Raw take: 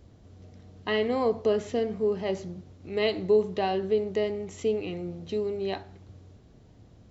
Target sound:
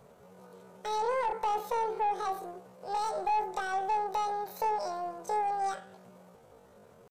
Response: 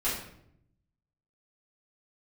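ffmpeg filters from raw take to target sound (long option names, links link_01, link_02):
-filter_complex "[0:a]aeval=exprs='(tanh(15.8*val(0)+0.25)-tanh(0.25))/15.8':channel_layout=same,lowshelf=frequency=190:width_type=q:width=3:gain=-6,acrossover=split=460[link_01][link_02];[link_02]alimiter=level_in=8dB:limit=-24dB:level=0:latency=1:release=238,volume=-8dB[link_03];[link_01][link_03]amix=inputs=2:normalize=0,asetrate=88200,aresample=44100,atempo=0.5"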